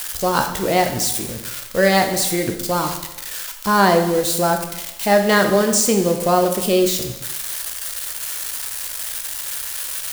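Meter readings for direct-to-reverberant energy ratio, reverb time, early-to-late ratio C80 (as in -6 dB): 4.5 dB, 0.95 s, 10.0 dB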